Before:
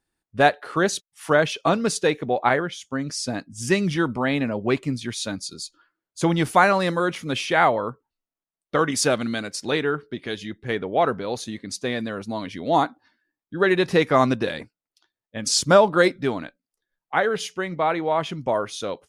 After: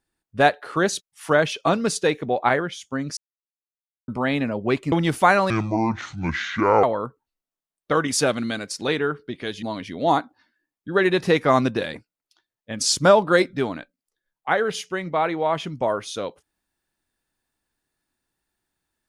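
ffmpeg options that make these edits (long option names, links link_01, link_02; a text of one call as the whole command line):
ffmpeg -i in.wav -filter_complex "[0:a]asplit=7[link_01][link_02][link_03][link_04][link_05][link_06][link_07];[link_01]atrim=end=3.17,asetpts=PTS-STARTPTS,afade=type=out:start_time=3.166:duration=0.004:curve=hsin[link_08];[link_02]atrim=start=3.17:end=4.08,asetpts=PTS-STARTPTS,volume=0[link_09];[link_03]atrim=start=4.08:end=4.922,asetpts=PTS-STARTPTS,afade=type=in:duration=0.004:curve=hsin[link_10];[link_04]atrim=start=6.248:end=6.834[link_11];[link_05]atrim=start=6.83:end=7.67,asetpts=PTS-STARTPTS,asetrate=27783,aresample=44100[link_12];[link_06]atrim=start=7.666:end=10.462[link_13];[link_07]atrim=start=12.278[link_14];[link_08][link_09][link_10]concat=n=3:v=0:a=1[link_15];[link_15][link_11]acrossfade=duration=0.004:curve1=hsin:curve2=hsin[link_16];[link_16][link_12]acrossfade=duration=0.004:curve1=hsin:curve2=hsin[link_17];[link_17][link_13]acrossfade=duration=0.004:curve1=hsin:curve2=hsin[link_18];[link_18][link_14]acrossfade=duration=0.004:curve1=hsin:curve2=hsin" out.wav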